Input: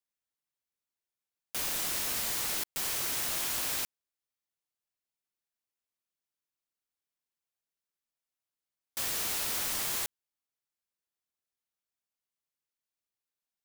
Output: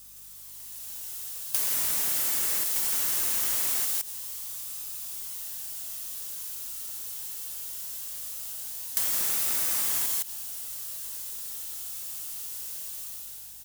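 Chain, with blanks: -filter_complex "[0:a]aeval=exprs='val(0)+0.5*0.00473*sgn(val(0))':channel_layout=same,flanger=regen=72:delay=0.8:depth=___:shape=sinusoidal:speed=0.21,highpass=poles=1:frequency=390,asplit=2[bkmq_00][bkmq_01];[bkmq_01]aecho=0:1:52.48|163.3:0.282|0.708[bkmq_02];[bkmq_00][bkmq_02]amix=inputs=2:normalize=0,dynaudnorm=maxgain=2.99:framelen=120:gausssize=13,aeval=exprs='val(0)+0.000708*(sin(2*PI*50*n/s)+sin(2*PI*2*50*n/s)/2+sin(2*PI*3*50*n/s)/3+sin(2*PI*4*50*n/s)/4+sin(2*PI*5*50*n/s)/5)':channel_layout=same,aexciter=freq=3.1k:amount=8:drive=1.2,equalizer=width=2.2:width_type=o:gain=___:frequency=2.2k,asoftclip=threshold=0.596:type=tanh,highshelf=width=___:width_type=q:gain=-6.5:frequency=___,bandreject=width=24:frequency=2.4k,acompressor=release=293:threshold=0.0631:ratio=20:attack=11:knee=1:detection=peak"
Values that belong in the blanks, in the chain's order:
1.5, -3, 1.5, 3k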